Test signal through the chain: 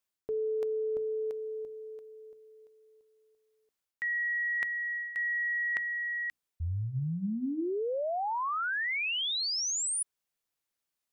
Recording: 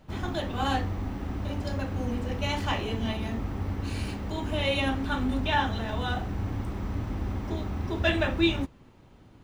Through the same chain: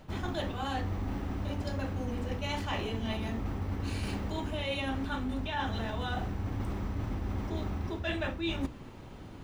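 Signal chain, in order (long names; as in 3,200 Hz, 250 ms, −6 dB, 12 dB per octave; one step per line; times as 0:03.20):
reversed playback
downward compressor 12 to 1, threshold −38 dBFS
reversed playback
mains-hum notches 60/120/180/240/300 Hz
level +8 dB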